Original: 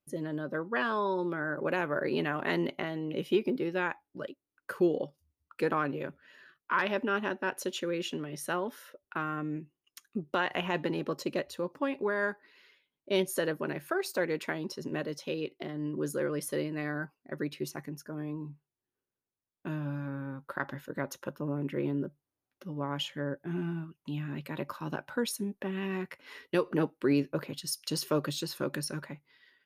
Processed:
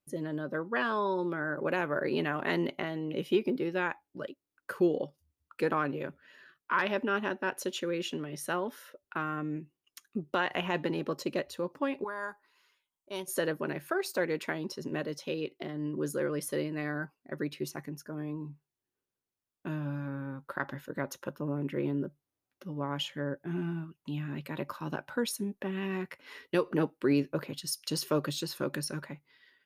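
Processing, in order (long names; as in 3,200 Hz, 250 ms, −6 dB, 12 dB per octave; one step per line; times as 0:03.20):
0:12.04–0:13.28: octave-band graphic EQ 125/250/500/1,000/2,000/4,000/8,000 Hz −12/−10/−11/+5/−10/−7/+5 dB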